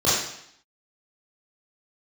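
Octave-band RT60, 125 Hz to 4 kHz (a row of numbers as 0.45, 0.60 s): 0.70, 0.75, 0.65, 0.75, 0.75, 0.75 s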